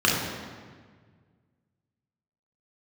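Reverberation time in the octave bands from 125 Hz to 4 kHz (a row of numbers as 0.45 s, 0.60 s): 2.5 s, 2.0 s, 1.7 s, 1.5 s, 1.5 s, 1.2 s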